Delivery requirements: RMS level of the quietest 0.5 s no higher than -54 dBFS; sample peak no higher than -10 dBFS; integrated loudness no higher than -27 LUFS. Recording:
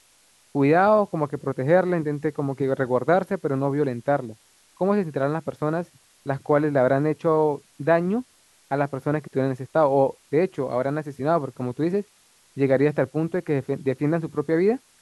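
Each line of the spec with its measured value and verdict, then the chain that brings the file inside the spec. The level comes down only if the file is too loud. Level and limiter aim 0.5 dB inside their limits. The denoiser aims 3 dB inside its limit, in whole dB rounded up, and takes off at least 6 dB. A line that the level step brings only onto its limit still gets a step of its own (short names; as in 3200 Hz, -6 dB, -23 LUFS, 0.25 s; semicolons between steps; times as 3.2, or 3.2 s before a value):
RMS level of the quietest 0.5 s -59 dBFS: OK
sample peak -6.0 dBFS: fail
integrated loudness -23.5 LUFS: fail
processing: gain -4 dB; limiter -10.5 dBFS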